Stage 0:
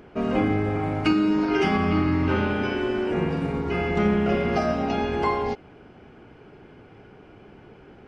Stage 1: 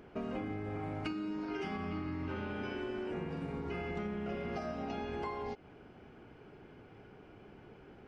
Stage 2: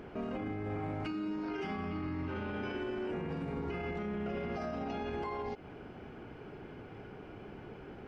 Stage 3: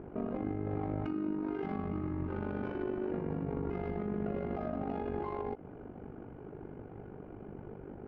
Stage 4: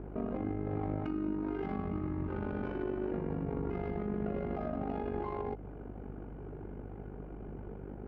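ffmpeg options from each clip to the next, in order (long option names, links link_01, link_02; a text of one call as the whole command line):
ffmpeg -i in.wav -af "acompressor=threshold=-29dB:ratio=6,volume=-7dB" out.wav
ffmpeg -i in.wav -af "highshelf=frequency=4800:gain=-5,alimiter=level_in=13dB:limit=-24dB:level=0:latency=1:release=57,volume=-13dB,volume=7dB" out.wav
ffmpeg -i in.wav -af "adynamicsmooth=sensitivity=1.5:basefreq=1000,tremolo=f=49:d=0.71,volume=5.5dB" out.wav
ffmpeg -i in.wav -af "aeval=exprs='val(0)+0.00501*(sin(2*PI*50*n/s)+sin(2*PI*2*50*n/s)/2+sin(2*PI*3*50*n/s)/3+sin(2*PI*4*50*n/s)/4+sin(2*PI*5*50*n/s)/5)':channel_layout=same" out.wav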